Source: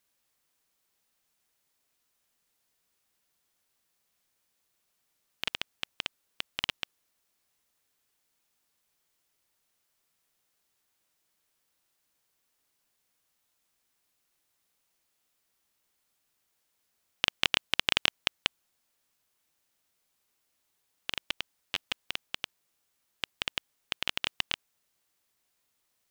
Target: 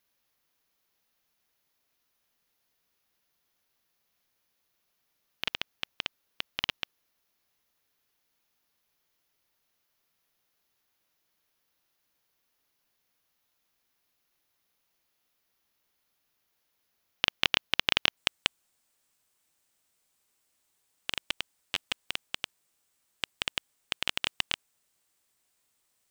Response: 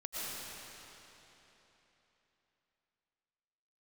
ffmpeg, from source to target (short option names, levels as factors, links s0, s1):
-af "asetnsamples=n=441:p=0,asendcmd='18.17 equalizer g 5.5',equalizer=f=8200:t=o:w=0.39:g=-11.5,volume=1.12"